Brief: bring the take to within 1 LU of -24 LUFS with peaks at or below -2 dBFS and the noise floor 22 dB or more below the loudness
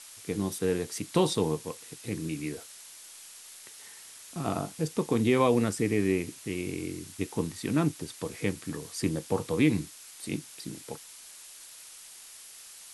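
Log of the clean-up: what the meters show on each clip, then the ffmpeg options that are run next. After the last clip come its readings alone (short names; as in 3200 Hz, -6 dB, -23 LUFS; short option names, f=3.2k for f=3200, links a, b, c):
noise floor -49 dBFS; noise floor target -53 dBFS; loudness -30.5 LUFS; peak -11.0 dBFS; loudness target -24.0 LUFS
-> -af "afftdn=nr=6:nf=-49"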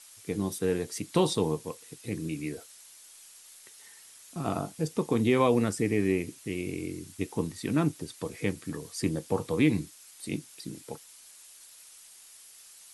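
noise floor -53 dBFS; loudness -30.0 LUFS; peak -11.0 dBFS; loudness target -24.0 LUFS
-> -af "volume=6dB"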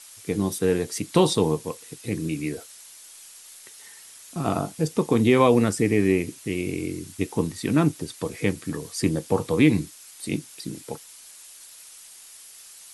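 loudness -24.0 LUFS; peak -5.0 dBFS; noise floor -47 dBFS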